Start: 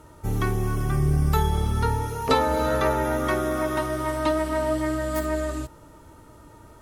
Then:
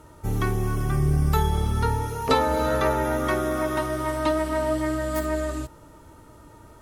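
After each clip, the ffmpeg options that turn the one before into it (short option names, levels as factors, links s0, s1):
-af anull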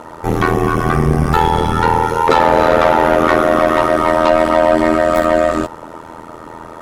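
-filter_complex "[0:a]asplit=2[s0][s1];[s1]highpass=f=720:p=1,volume=17.8,asoftclip=type=tanh:threshold=0.473[s2];[s0][s2]amix=inputs=2:normalize=0,lowpass=f=1200:p=1,volume=0.501,tremolo=f=82:d=0.974,volume=2.66"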